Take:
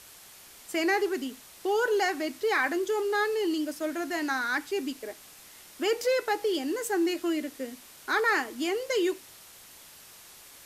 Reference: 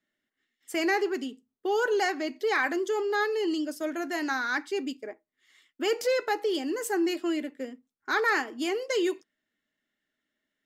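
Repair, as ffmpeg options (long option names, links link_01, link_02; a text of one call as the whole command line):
ffmpeg -i in.wav -af "afwtdn=0.0035" out.wav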